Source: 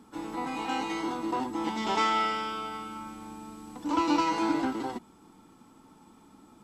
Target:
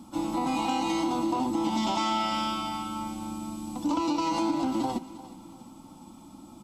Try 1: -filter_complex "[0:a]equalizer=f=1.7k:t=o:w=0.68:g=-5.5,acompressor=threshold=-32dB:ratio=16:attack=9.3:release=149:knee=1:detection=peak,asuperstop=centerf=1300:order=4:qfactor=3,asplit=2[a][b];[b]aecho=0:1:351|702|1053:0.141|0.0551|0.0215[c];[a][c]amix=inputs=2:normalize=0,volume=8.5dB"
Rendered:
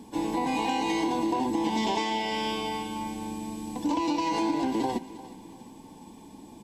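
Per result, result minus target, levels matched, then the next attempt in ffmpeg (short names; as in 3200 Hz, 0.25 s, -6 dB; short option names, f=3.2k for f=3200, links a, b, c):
2000 Hz band +3.5 dB; 500 Hz band +2.5 dB
-filter_complex "[0:a]equalizer=f=1.7k:t=o:w=0.68:g=-16.5,acompressor=threshold=-32dB:ratio=16:attack=9.3:release=149:knee=1:detection=peak,asuperstop=centerf=1300:order=4:qfactor=3,asplit=2[a][b];[b]aecho=0:1:351|702|1053:0.141|0.0551|0.0215[c];[a][c]amix=inputs=2:normalize=0,volume=8.5dB"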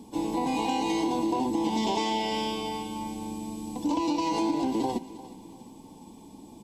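500 Hz band +3.0 dB
-filter_complex "[0:a]equalizer=f=1.7k:t=o:w=0.68:g=-16.5,acompressor=threshold=-32dB:ratio=16:attack=9.3:release=149:knee=1:detection=peak,asuperstop=centerf=430:order=4:qfactor=3,asplit=2[a][b];[b]aecho=0:1:351|702|1053:0.141|0.0551|0.0215[c];[a][c]amix=inputs=2:normalize=0,volume=8.5dB"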